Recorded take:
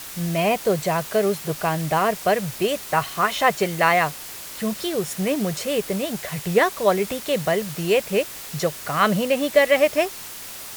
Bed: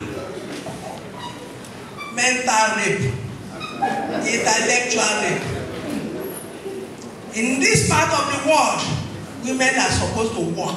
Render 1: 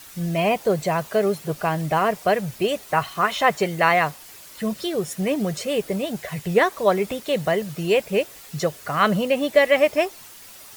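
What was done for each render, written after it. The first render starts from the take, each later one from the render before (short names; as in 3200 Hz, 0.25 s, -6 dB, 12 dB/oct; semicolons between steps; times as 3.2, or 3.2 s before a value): denoiser 9 dB, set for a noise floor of -37 dBFS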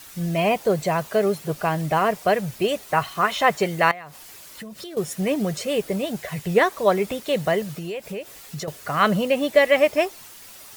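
3.91–4.97 compressor 16:1, threshold -33 dBFS; 7.77–8.68 compressor, threshold -28 dBFS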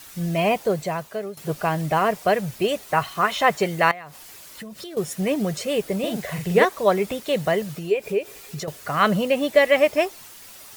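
0.53–1.37 fade out linear, to -15.5 dB; 5.99–6.65 doubler 45 ms -3.5 dB; 7.9–8.59 small resonant body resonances 410/2400 Hz, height 15 dB -> 11 dB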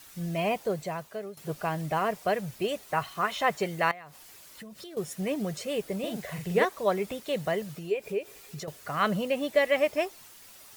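gain -7.5 dB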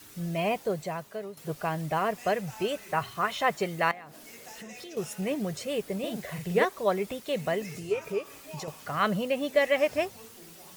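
add bed -30 dB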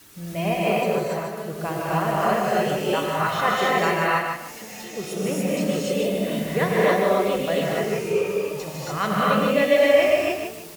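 on a send: feedback echo 0.151 s, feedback 27%, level -6 dB; on the sum: non-linear reverb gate 0.32 s rising, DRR -5.5 dB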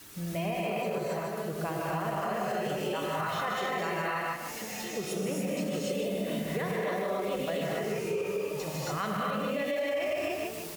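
limiter -15.5 dBFS, peak gain reduction 9.5 dB; compressor 2.5:1, threshold -32 dBFS, peak gain reduction 8.5 dB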